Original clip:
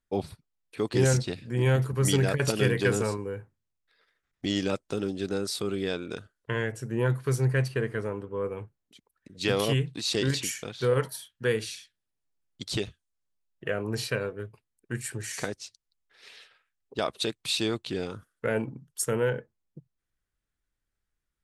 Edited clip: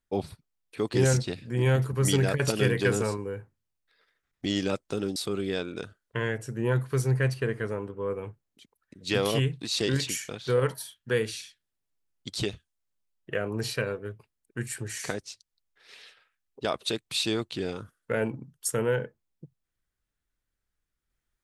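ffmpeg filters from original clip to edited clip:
-filter_complex "[0:a]asplit=2[s0][s1];[s0]atrim=end=5.162[s2];[s1]atrim=start=5.498[s3];[s2][s3]acrossfade=d=0.004:c1=hsin:c2=hsin"

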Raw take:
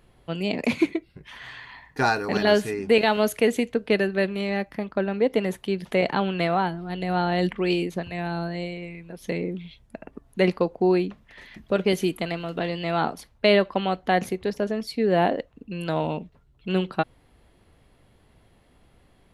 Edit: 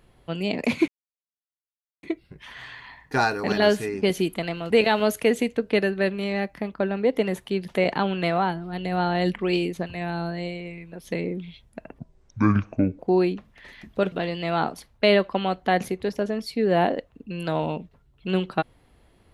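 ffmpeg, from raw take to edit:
-filter_complex "[0:a]asplit=7[s0][s1][s2][s3][s4][s5][s6];[s0]atrim=end=0.88,asetpts=PTS-STARTPTS,afade=t=out:st=0.876:d=0.004:c=hsin,apad=pad_dur=1.15[s7];[s1]atrim=start=0.88:end=2.872,asetpts=PTS-STARTPTS,afade=t=in:d=0.004:c=hsin[s8];[s2]atrim=start=11.848:end=12.532[s9];[s3]atrim=start=2.868:end=10.164[s10];[s4]atrim=start=10.16:end=10.72,asetpts=PTS-STARTPTS,asetrate=24696,aresample=44100[s11];[s5]atrim=start=10.716:end=11.852[s12];[s6]atrim=start=12.528[s13];[s7][s8]concat=n=2:v=0:a=1[s14];[s14][s9]acrossfade=d=0.004:c1=hsin:c2=hsin[s15];[s15][s10]acrossfade=d=0.004:c1=hsin:c2=hsin[s16];[s16][s11]acrossfade=d=0.004:c1=hsin:c2=hsin[s17];[s17][s12]acrossfade=d=0.004:c1=hsin:c2=hsin[s18];[s18][s13]acrossfade=d=0.004:c1=hsin:c2=hsin"

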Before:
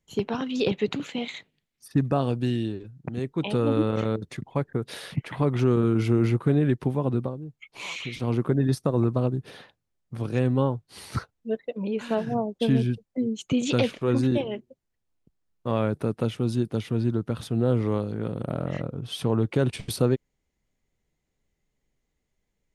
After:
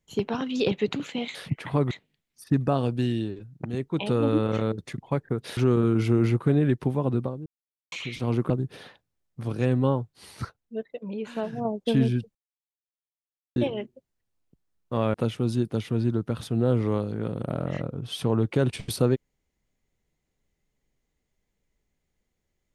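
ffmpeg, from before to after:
-filter_complex "[0:a]asplit=12[s0][s1][s2][s3][s4][s5][s6][s7][s8][s9][s10][s11];[s0]atrim=end=1.352[s12];[s1]atrim=start=5.008:end=5.572[s13];[s2]atrim=start=1.348:end=5.012[s14];[s3]atrim=start=5.568:end=7.46,asetpts=PTS-STARTPTS,afade=t=out:st=1.888:d=0.004:c=hsin[s15];[s4]atrim=start=7.46:end=7.92,asetpts=PTS-STARTPTS,volume=0[s16];[s5]atrim=start=7.92:end=8.502,asetpts=PTS-STARTPTS,afade=t=in:d=0.004:c=hsin[s17];[s6]atrim=start=9.238:end=10.882[s18];[s7]atrim=start=10.878:end=12.392,asetpts=PTS-STARTPTS,volume=0.596[s19];[s8]atrim=start=12.388:end=13.09,asetpts=PTS-STARTPTS,afade=t=out:st=0.698:d=0.004:c=hsin[s20];[s9]atrim=start=13.09:end=14.3,asetpts=PTS-STARTPTS,volume=0[s21];[s10]atrim=start=14.3:end=15.882,asetpts=PTS-STARTPTS,afade=t=in:d=0.004:c=hsin[s22];[s11]atrim=start=16.138[s23];[s12][s13]acrossfade=d=0.004:c1=hsin:c2=hsin[s24];[s24][s14]acrossfade=d=0.004:c1=hsin:c2=hsin[s25];[s15][s16][s17]concat=n=3:v=0:a=1[s26];[s25][s26]acrossfade=d=0.004:c1=hsin:c2=hsin[s27];[s27][s18]acrossfade=d=0.004:c1=hsin:c2=hsin[s28];[s28][s19]acrossfade=d=0.004:c1=hsin:c2=hsin[s29];[s20][s21][s22]concat=n=3:v=0:a=1[s30];[s29][s30]acrossfade=d=0.004:c1=hsin:c2=hsin[s31];[s31][s23]acrossfade=d=0.004:c1=hsin:c2=hsin"

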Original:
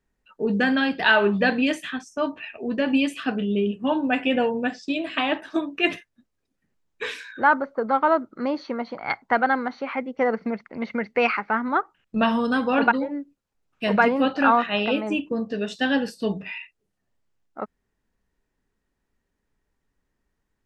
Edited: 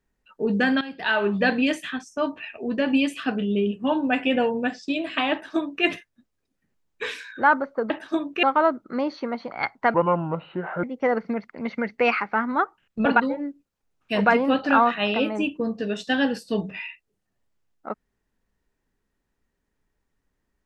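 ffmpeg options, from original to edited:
-filter_complex "[0:a]asplit=7[s0][s1][s2][s3][s4][s5][s6];[s0]atrim=end=0.81,asetpts=PTS-STARTPTS,afade=t=out:st=0.806:d=0.004:c=hsin:silence=0.16788[s7];[s1]atrim=start=0.81:end=7.902,asetpts=PTS-STARTPTS,afade=t=in:d=0.68:silence=0.16788[s8];[s2]atrim=start=5.318:end=5.852[s9];[s3]atrim=start=7.898:end=9.414[s10];[s4]atrim=start=9.41:end=10,asetpts=PTS-STARTPTS,asetrate=29106,aresample=44100[s11];[s5]atrim=start=9.996:end=12.222[s12];[s6]atrim=start=12.768[s13];[s7][s8]concat=n=2:v=0:a=1[s14];[s14][s9]acrossfade=d=0.004:c1=hsin:c2=hsin[s15];[s15][s10]acrossfade=d=0.004:c1=hsin:c2=hsin[s16];[s16][s11]acrossfade=d=0.004:c1=hsin:c2=hsin[s17];[s17][s12]acrossfade=d=0.004:c1=hsin:c2=hsin[s18];[s18][s13]acrossfade=d=0.004:c1=hsin:c2=hsin"

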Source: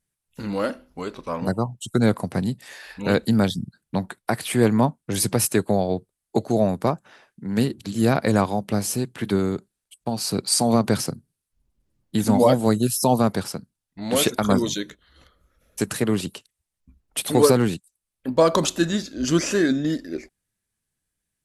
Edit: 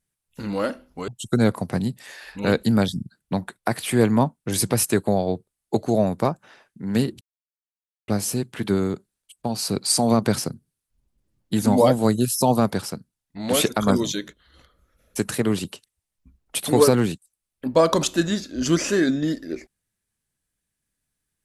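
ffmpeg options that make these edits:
-filter_complex "[0:a]asplit=4[s0][s1][s2][s3];[s0]atrim=end=1.082[s4];[s1]atrim=start=1.698:end=7.83,asetpts=PTS-STARTPTS,afade=t=out:st=6.128:d=0.004:c=hsin[s5];[s2]atrim=start=7.83:end=8.7,asetpts=PTS-STARTPTS,volume=0[s6];[s3]atrim=start=8.7,asetpts=PTS-STARTPTS,afade=t=in:d=0.004:c=hsin[s7];[s5][s6][s7]concat=n=3:v=0:a=1[s8];[s4][s8]acrossfade=d=0.004:c1=hsin:c2=hsin"

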